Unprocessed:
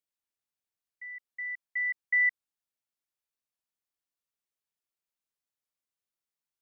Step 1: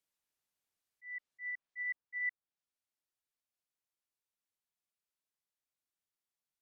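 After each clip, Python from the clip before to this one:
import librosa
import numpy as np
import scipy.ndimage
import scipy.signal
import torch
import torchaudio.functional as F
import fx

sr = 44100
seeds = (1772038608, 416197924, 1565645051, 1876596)

y = fx.auto_swell(x, sr, attack_ms=190.0)
y = fx.rider(y, sr, range_db=3, speed_s=0.5)
y = fx.env_lowpass_down(y, sr, base_hz=1700.0, full_db=-35.0)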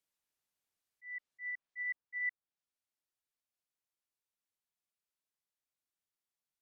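y = x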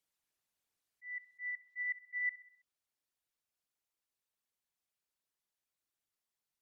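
y = fx.envelope_sharpen(x, sr, power=1.5)
y = fx.echo_feedback(y, sr, ms=65, feedback_pct=53, wet_db=-17.5)
y = y * librosa.db_to_amplitude(1.0)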